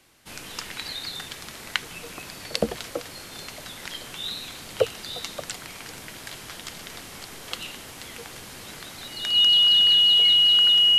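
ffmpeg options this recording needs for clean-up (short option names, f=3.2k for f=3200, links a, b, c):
-af "bandreject=f=2.9k:w=30"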